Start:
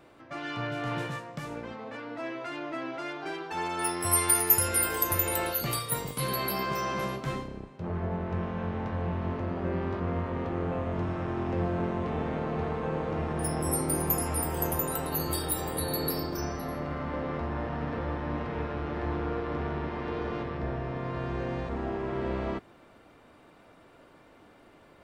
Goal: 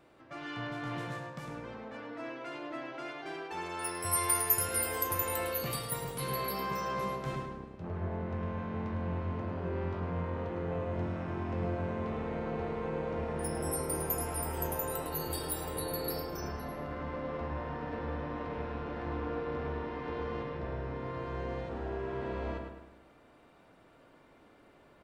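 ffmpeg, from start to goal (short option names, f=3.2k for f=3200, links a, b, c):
-filter_complex "[0:a]asplit=2[a][b];[b]adelay=105,lowpass=f=3.8k:p=1,volume=-4dB,asplit=2[c][d];[d]adelay=105,lowpass=f=3.8k:p=1,volume=0.49,asplit=2[e][f];[f]adelay=105,lowpass=f=3.8k:p=1,volume=0.49,asplit=2[g][h];[h]adelay=105,lowpass=f=3.8k:p=1,volume=0.49,asplit=2[i][j];[j]adelay=105,lowpass=f=3.8k:p=1,volume=0.49,asplit=2[k][l];[l]adelay=105,lowpass=f=3.8k:p=1,volume=0.49[m];[a][c][e][g][i][k][m]amix=inputs=7:normalize=0,volume=-6dB"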